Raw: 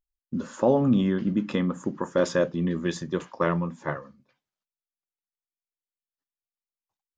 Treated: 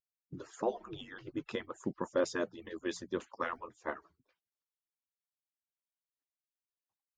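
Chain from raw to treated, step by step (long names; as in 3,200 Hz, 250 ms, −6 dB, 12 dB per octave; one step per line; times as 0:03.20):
harmonic-percussive split with one part muted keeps percussive
0:02.20–0:03.17: mains-hum notches 60/120/180 Hz
level −7 dB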